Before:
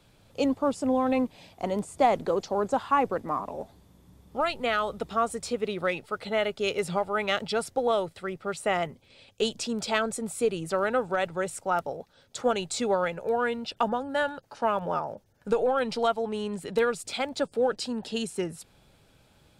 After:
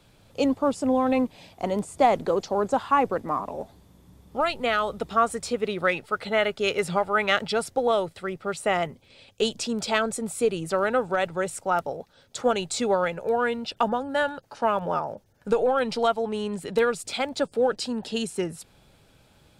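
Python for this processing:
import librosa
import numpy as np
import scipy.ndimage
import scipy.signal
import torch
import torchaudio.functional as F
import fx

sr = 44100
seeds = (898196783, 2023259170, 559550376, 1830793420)

y = fx.dynamic_eq(x, sr, hz=1600.0, q=1.3, threshold_db=-40.0, ratio=4.0, max_db=5, at=(5.02, 7.52))
y = F.gain(torch.from_numpy(y), 2.5).numpy()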